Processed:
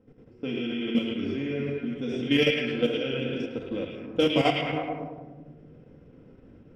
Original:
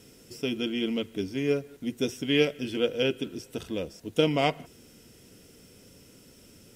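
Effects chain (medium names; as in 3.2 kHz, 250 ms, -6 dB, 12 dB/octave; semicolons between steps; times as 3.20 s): simulated room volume 1200 m³, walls mixed, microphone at 2.1 m; level held to a coarse grid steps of 10 dB; level-controlled noise filter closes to 920 Hz, open at -19 dBFS; on a send: repeats whose band climbs or falls 107 ms, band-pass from 2.8 kHz, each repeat -0.7 oct, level -0.5 dB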